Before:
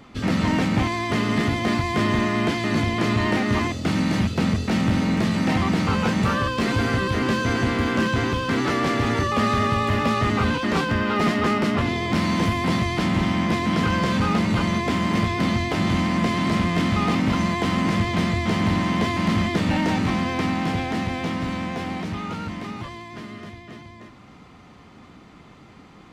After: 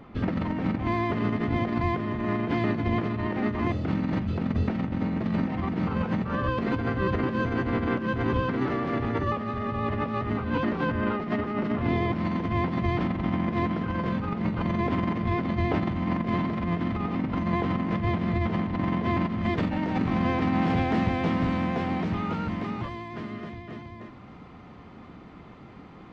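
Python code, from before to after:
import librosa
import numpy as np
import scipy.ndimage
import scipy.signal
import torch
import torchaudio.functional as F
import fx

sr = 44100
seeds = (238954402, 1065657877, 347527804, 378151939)

y = fx.hum_notches(x, sr, base_hz=50, count=6)
y = fx.over_compress(y, sr, threshold_db=-24.0, ratio=-0.5)
y = fx.spacing_loss(y, sr, db_at_10k=fx.steps((0.0, 38.0), (19.41, 29.0), (20.61, 24.0)))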